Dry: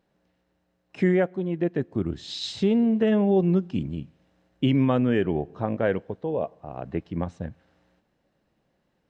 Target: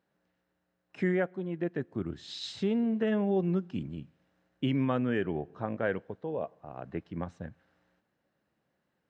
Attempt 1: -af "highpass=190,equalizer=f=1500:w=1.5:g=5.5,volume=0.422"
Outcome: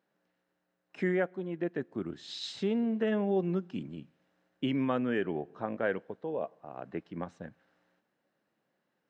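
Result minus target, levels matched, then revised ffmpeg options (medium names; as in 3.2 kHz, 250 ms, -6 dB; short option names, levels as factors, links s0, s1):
125 Hz band -3.5 dB
-af "highpass=76,equalizer=f=1500:w=1.5:g=5.5,volume=0.422"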